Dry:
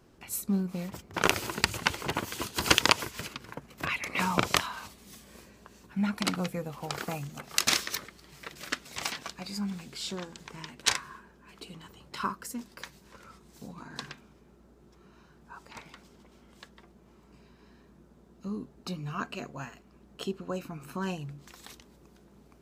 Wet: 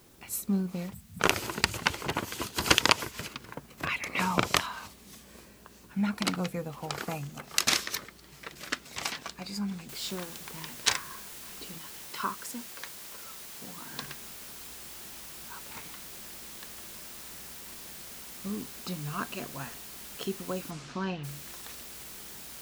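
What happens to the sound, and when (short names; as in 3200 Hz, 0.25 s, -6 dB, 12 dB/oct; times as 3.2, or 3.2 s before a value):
0.94–1.2 spectral delete 250–7600 Hz
9.89 noise floor step -61 dB -45 dB
11.78–13.94 low shelf 210 Hz -8 dB
20.7–21.23 LPF 9200 Hz -> 3600 Hz 24 dB/oct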